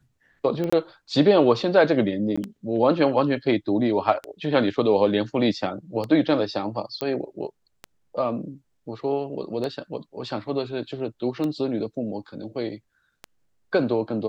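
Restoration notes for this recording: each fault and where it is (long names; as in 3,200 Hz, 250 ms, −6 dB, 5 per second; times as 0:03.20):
scratch tick 33 1/3 rpm −17 dBFS
0:00.70–0:00.72: drop-out 25 ms
0:02.36–0:02.38: drop-out 15 ms
0:07.01: click −14 dBFS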